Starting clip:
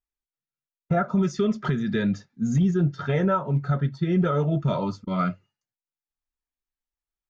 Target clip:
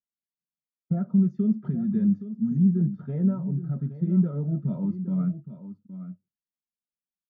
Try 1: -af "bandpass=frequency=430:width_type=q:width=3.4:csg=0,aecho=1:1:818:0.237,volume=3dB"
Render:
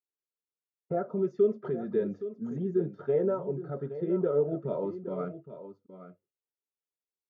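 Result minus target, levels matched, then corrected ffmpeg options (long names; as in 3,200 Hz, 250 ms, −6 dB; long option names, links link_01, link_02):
500 Hz band +18.0 dB
-af "bandpass=frequency=200:width_type=q:width=3.4:csg=0,aecho=1:1:818:0.237,volume=3dB"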